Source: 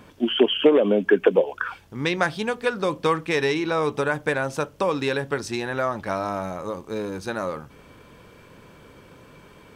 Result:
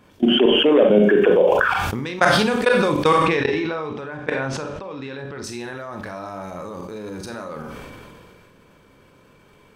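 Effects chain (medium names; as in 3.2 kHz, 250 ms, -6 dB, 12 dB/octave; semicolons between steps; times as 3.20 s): level held to a coarse grid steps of 20 dB; 3.18–5.44 s: low-pass 3.9 kHz 12 dB/octave; Schroeder reverb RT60 0.38 s, combs from 30 ms, DRR 5.5 dB; decay stretcher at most 22 dB/s; trim +6 dB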